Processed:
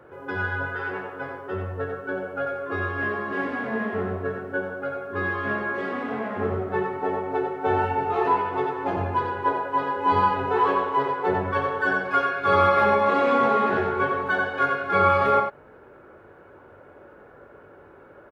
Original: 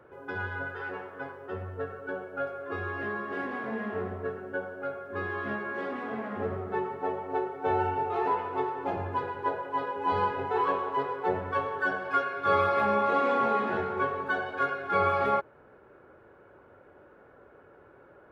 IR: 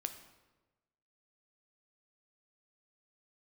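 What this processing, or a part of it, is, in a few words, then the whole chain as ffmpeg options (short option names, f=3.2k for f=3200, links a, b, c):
slapback doubling: -filter_complex "[0:a]asplit=3[a][b][c];[b]adelay=21,volume=-8.5dB[d];[c]adelay=90,volume=-5.5dB[e];[a][d][e]amix=inputs=3:normalize=0,volume=5dB"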